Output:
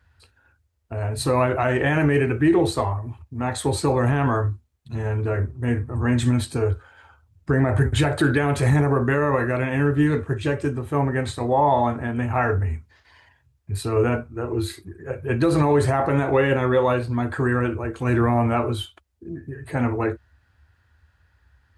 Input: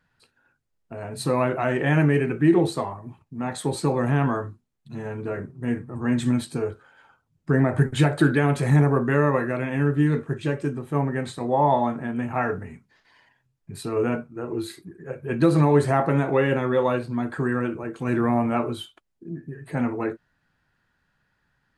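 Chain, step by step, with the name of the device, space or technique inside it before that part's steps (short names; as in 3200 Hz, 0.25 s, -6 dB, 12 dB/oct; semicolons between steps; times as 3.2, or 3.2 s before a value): HPF 60 Hz 24 dB/oct; car stereo with a boomy subwoofer (resonant low shelf 110 Hz +14 dB, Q 3; limiter -14 dBFS, peak gain reduction 6.5 dB); gain +4.5 dB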